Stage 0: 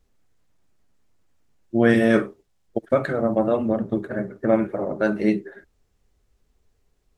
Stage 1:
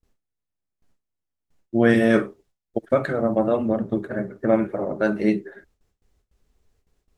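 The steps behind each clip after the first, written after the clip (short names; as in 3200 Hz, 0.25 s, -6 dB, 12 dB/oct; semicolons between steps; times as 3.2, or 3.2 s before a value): gate with hold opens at -56 dBFS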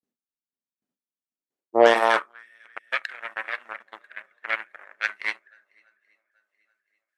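swung echo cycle 0.831 s, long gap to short 1.5:1, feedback 36%, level -16 dB; added harmonics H 7 -18 dB, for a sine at -3 dBFS; high-pass sweep 230 Hz -> 1900 Hz, 1.3–2.54; gain +2 dB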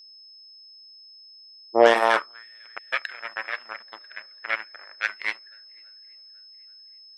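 whine 5200 Hz -46 dBFS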